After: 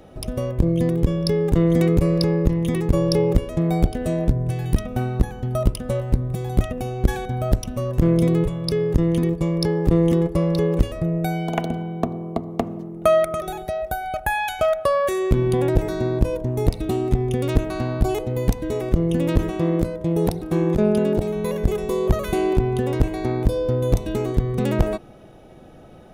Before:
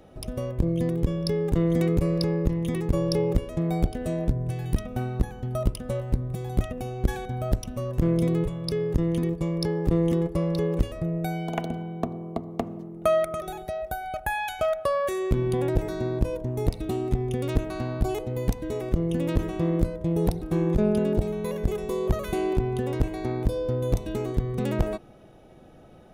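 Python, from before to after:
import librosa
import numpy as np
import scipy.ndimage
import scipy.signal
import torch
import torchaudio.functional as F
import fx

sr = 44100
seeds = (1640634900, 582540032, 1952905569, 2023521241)

y = fx.low_shelf(x, sr, hz=90.0, db=-10.5, at=(19.5, 21.36))
y = F.gain(torch.from_numpy(y), 5.5).numpy()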